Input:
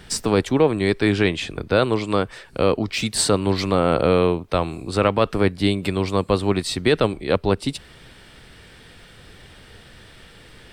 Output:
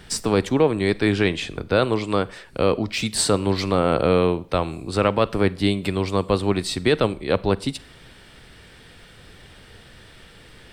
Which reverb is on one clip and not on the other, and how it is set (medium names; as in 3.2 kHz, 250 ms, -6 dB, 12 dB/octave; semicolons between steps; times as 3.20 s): Schroeder reverb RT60 0.47 s, combs from 33 ms, DRR 19.5 dB; trim -1 dB